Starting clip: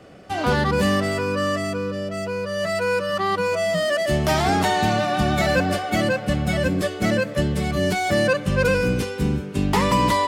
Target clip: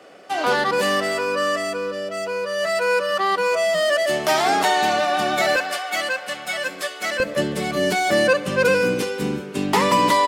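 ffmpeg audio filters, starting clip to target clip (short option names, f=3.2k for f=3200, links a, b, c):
-af "asetnsamples=n=441:p=0,asendcmd='5.56 highpass f 910;7.2 highpass f 260',highpass=420,aecho=1:1:71|142|213|284:0.0891|0.0481|0.026|0.014,volume=3dB"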